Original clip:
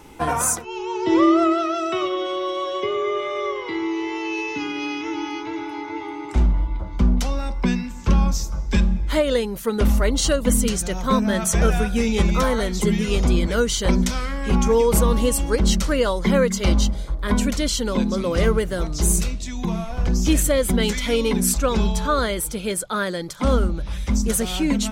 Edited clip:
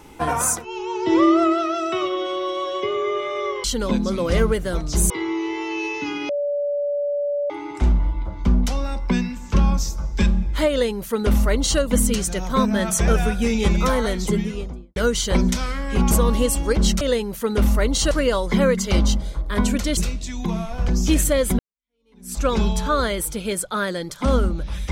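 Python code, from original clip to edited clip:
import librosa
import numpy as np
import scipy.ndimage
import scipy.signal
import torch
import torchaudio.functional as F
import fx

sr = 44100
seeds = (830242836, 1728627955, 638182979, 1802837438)

y = fx.studio_fade_out(x, sr, start_s=12.68, length_s=0.82)
y = fx.edit(y, sr, fx.bleep(start_s=4.83, length_s=1.21, hz=577.0, db=-20.0),
    fx.duplicate(start_s=9.24, length_s=1.1, to_s=15.84),
    fx.cut(start_s=14.65, length_s=0.29),
    fx.move(start_s=17.7, length_s=1.46, to_s=3.64),
    fx.fade_in_span(start_s=20.78, length_s=0.82, curve='exp'), tone=tone)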